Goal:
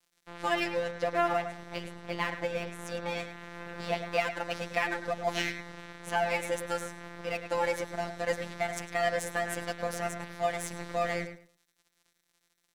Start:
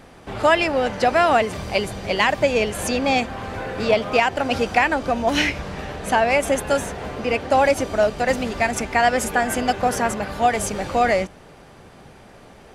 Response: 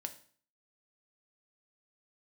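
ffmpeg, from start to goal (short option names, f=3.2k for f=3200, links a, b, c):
-filter_complex "[0:a]asettb=1/sr,asplit=3[a][b][c];[a]atrim=end=0.914[d];[b]atrim=start=0.91:end=3.2,asetpts=PTS-STARTPTS,afade=t=in:d=0.004:c=qsin,afade=t=out:st=2.286:d=0.004:c=qsin,highshelf=f=3.3k:g=-9[e];[c]atrim=start=3.196[f];[d][e]acrossfade=d=0.004:c1=hsin:c2=qsin[g];[g][f]acrossfade=d=0.004:c1=qsin:c2=hsin,afftfilt=real='hypot(re,im)*cos(PI*b)':imag='0':win_size=1024:overlap=0.75,aeval=exprs='sgn(val(0))*max(abs(val(0))-0.0158,0)':c=same,asplit=2[h][i];[i]adelay=105,lowpass=f=3.8k:p=1,volume=-9dB,asplit=2[j][k];[k]adelay=105,lowpass=f=3.8k:p=1,volume=0.22,asplit=2[l][m];[m]adelay=105,lowpass=f=3.8k:p=1,volume=0.22[n];[h][j][l][n]amix=inputs=4:normalize=0,volume=-7.5dB"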